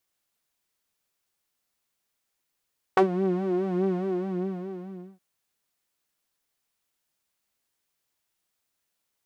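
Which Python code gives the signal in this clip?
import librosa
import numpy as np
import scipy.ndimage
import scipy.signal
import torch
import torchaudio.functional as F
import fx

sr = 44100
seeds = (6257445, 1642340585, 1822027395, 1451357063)

y = fx.sub_patch_vibrato(sr, seeds[0], note=66, wave='saw', wave2='saw', interval_st=-12, detune_cents=16, level2_db=0.0, sub_db=-15.0, noise_db=-30.0, kind='bandpass', cutoff_hz=220.0, q=1.5, env_oct=2.5, env_decay_s=0.06, env_sustain_pct=15, attack_ms=3.2, decay_s=0.1, sustain_db=-11.0, release_s=1.27, note_s=0.95, lfo_hz=4.8, vibrato_cents=77)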